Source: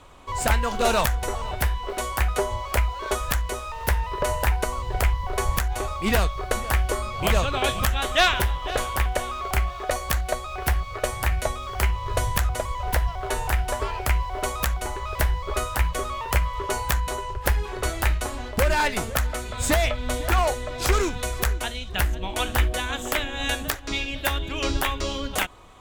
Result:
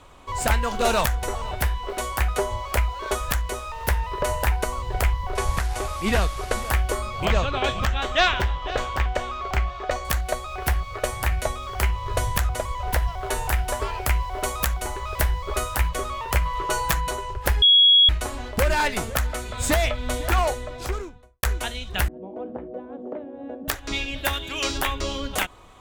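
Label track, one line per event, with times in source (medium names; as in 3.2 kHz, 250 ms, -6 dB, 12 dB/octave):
5.350000	6.700000	one-bit delta coder 64 kbps, step -32 dBFS
7.250000	10.050000	boxcar filter over 4 samples
13.020000	15.890000	treble shelf 7.1 kHz +4 dB
16.450000	17.110000	comb 6.1 ms, depth 66%
17.620000	18.090000	bleep 3.33 kHz -11 dBFS
20.360000	21.430000	studio fade out
22.080000	23.680000	Chebyshev band-pass 210–550 Hz
24.330000	24.780000	tilt EQ +2 dB/octave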